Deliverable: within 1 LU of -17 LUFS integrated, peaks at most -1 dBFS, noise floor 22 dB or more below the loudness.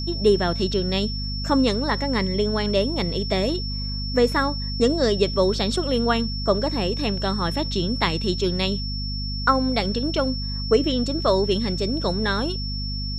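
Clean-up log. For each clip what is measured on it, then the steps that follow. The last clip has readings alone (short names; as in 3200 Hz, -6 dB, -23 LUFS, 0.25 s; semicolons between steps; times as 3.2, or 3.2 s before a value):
hum 50 Hz; harmonics up to 250 Hz; hum level -26 dBFS; steady tone 5400 Hz; tone level -31 dBFS; loudness -23.0 LUFS; peak -5.0 dBFS; loudness target -17.0 LUFS
-> de-hum 50 Hz, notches 5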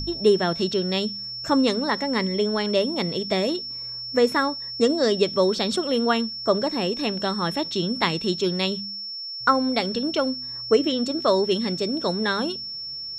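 hum none; steady tone 5400 Hz; tone level -31 dBFS
-> notch 5400 Hz, Q 30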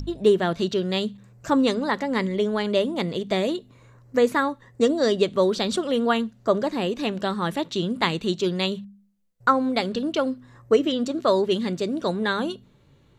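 steady tone none; loudness -24.0 LUFS; peak -6.0 dBFS; loudness target -17.0 LUFS
-> gain +7 dB; limiter -1 dBFS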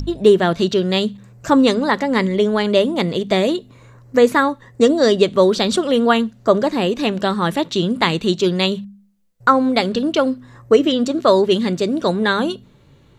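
loudness -17.0 LUFS; peak -1.0 dBFS; noise floor -50 dBFS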